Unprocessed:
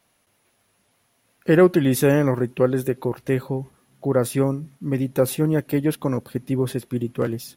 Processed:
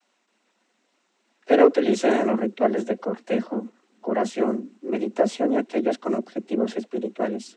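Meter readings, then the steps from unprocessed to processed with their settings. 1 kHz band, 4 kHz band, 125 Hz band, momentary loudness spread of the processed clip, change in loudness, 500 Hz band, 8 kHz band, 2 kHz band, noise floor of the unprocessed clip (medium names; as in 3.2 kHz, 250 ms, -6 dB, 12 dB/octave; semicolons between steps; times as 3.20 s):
+4.5 dB, -1.0 dB, under -15 dB, 12 LU, -2.0 dB, -0.5 dB, -8.0 dB, -2.0 dB, -67 dBFS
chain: noise-vocoded speech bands 12; vibrato 3.4 Hz 41 cents; frequency shift +100 Hz; trim -1.5 dB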